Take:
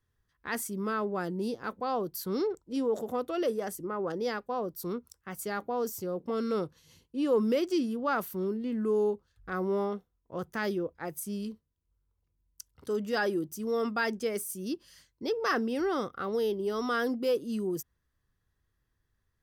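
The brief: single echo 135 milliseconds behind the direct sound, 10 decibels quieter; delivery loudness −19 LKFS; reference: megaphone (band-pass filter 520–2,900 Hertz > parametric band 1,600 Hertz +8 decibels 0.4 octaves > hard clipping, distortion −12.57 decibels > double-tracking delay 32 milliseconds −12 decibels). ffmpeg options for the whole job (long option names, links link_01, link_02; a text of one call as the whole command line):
ffmpeg -i in.wav -filter_complex "[0:a]highpass=520,lowpass=2900,equalizer=frequency=1600:width_type=o:width=0.4:gain=8,aecho=1:1:135:0.316,asoftclip=type=hard:threshold=-26dB,asplit=2[link_01][link_02];[link_02]adelay=32,volume=-12dB[link_03];[link_01][link_03]amix=inputs=2:normalize=0,volume=16dB" out.wav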